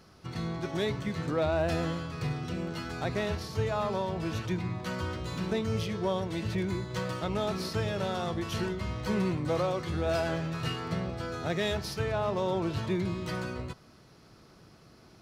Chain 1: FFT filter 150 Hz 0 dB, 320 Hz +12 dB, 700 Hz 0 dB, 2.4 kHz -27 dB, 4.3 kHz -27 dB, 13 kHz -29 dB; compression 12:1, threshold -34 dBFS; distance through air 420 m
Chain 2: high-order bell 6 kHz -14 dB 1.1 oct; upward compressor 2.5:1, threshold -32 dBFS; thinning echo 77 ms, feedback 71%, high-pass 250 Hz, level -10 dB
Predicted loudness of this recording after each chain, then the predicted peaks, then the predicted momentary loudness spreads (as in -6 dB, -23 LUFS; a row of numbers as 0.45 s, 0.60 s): -39.0 LUFS, -32.0 LUFS; -26.5 dBFS, -16.0 dBFS; 3 LU, 8 LU